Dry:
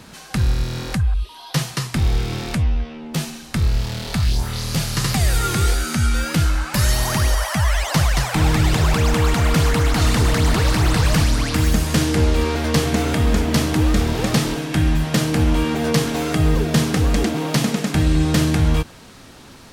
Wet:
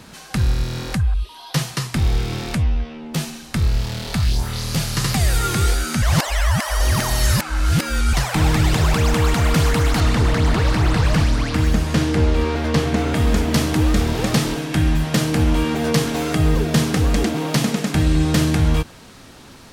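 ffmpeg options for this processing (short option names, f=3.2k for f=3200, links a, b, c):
-filter_complex "[0:a]asettb=1/sr,asplit=3[a][b][c];[a]atrim=end=10.004[d];[b]atrim=start=10:end=13.15,asetpts=PTS-STARTPTS,afade=t=in:d=0.004:c=qsin,afade=t=out:st=3.146:d=0.004:c=qsin,lowpass=f=3.4k:p=1[e];[c]atrim=start=13.146[f];[d][e]acrossfade=d=0.004:c1=hsin:c2=qsin[g];[g][f]acrossfade=d=0.004:c1=qsin:c2=hsin,asplit=3[h][i][j];[h]atrim=end=6.022[k];[i]atrim=start=6.018:end=8.132,asetpts=PTS-STARTPTS,areverse[l];[j]atrim=start=8.128[m];[k][l]acrossfade=d=0.004:c1=hsin:c2=hsin[n];[n][m]acrossfade=d=0.004:c1=hsin:c2=hsin"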